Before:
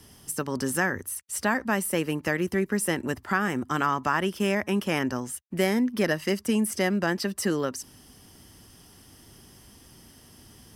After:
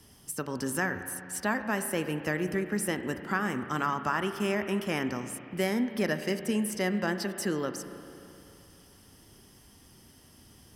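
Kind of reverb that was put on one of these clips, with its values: spring tank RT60 2.9 s, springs 33/38 ms, chirp 55 ms, DRR 8.5 dB; trim -4.5 dB

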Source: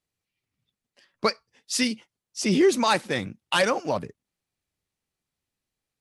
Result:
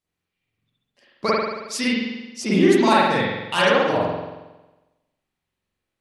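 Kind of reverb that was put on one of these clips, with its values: spring tank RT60 1.1 s, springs 45 ms, chirp 30 ms, DRR -7.5 dB; trim -2.5 dB

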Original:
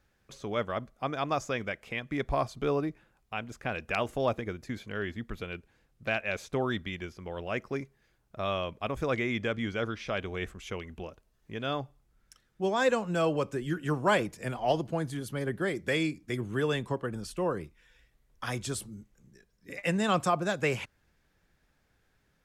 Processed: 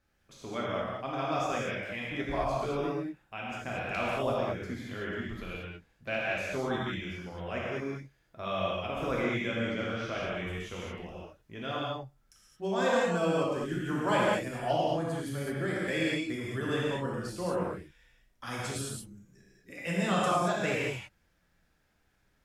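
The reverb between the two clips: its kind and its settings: gated-style reverb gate 250 ms flat, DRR -6 dB; trim -7 dB

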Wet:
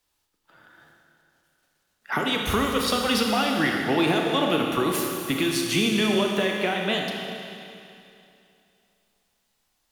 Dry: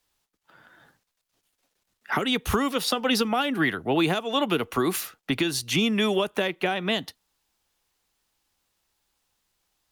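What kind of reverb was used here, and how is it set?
Schroeder reverb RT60 2.7 s, combs from 26 ms, DRR 0.5 dB; trim -1 dB

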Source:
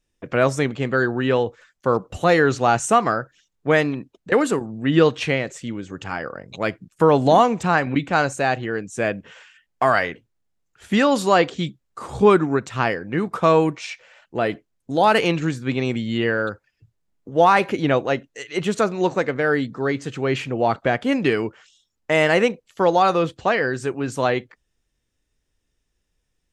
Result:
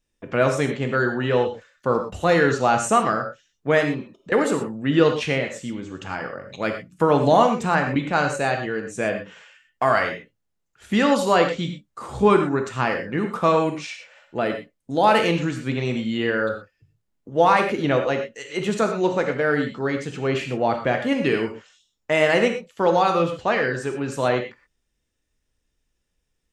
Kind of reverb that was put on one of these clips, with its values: gated-style reverb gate 140 ms flat, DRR 4 dB; trim -2.5 dB

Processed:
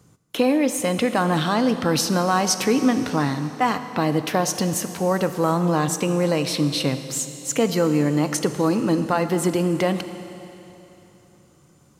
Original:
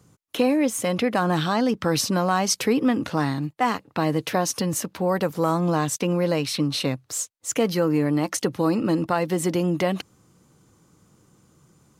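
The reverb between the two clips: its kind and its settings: Schroeder reverb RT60 3.2 s, combs from 27 ms, DRR 9.5 dB; trim +1.5 dB

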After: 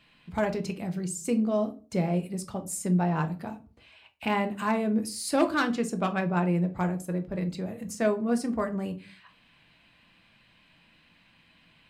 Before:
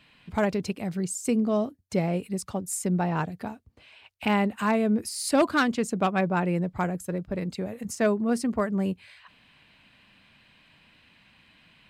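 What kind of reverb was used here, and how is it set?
simulated room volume 200 m³, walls furnished, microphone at 0.76 m; trim -3.5 dB

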